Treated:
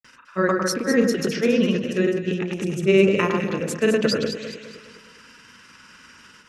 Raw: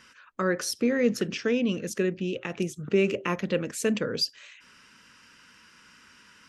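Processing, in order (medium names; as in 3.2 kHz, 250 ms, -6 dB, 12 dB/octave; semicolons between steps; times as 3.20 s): granulator, grains 20 per s, pitch spread up and down by 0 st; echo whose repeats swap between lows and highs 103 ms, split 1.6 kHz, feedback 65%, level -3.5 dB; endings held to a fixed fall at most 120 dB/s; trim +7 dB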